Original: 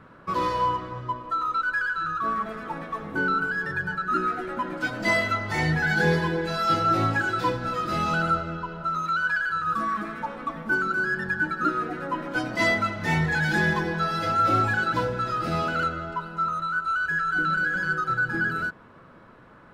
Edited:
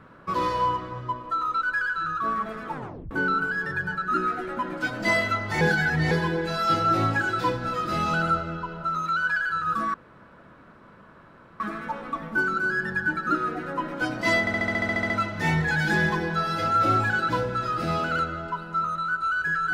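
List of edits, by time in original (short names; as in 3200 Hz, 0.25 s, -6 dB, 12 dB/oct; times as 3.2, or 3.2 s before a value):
2.74 tape stop 0.37 s
5.61–6.11 reverse
9.94 insert room tone 1.66 s
12.74 stutter 0.07 s, 11 plays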